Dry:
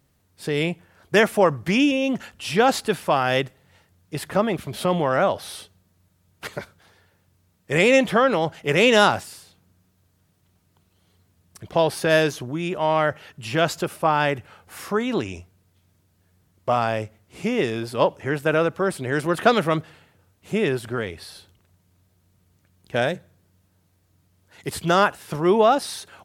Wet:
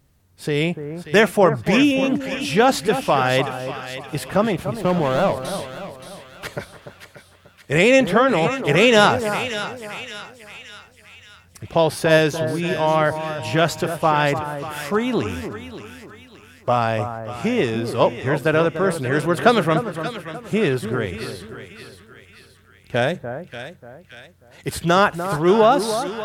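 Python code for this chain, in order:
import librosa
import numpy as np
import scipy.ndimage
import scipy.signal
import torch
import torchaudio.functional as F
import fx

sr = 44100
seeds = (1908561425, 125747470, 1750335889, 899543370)

y = fx.median_filter(x, sr, points=25, at=(4.72, 5.45))
y = fx.low_shelf(y, sr, hz=75.0, db=10.0)
y = fx.echo_split(y, sr, split_hz=1500.0, low_ms=294, high_ms=574, feedback_pct=52, wet_db=-9.5)
y = y * librosa.db_to_amplitude(2.0)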